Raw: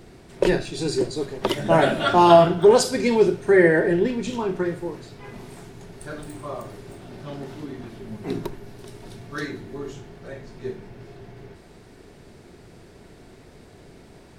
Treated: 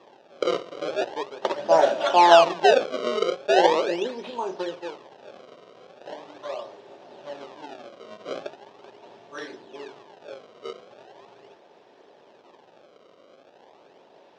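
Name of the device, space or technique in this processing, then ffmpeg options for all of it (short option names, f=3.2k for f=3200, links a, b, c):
circuit-bent sampling toy: -af "acrusher=samples=29:mix=1:aa=0.000001:lfo=1:lforange=46.4:lforate=0.4,highpass=480,equalizer=f=560:t=q:w=4:g=7,equalizer=f=870:t=q:w=4:g=5,equalizer=f=1.4k:t=q:w=4:g=-5,equalizer=f=2.1k:t=q:w=4:g=-7,equalizer=f=4.5k:t=q:w=4:g=-4,lowpass=f=5k:w=0.5412,lowpass=f=5k:w=1.3066,volume=-2dB"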